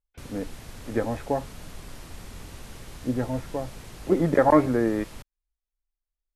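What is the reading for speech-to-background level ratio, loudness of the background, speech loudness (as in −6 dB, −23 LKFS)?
18.0 dB, −43.5 LKFS, −25.5 LKFS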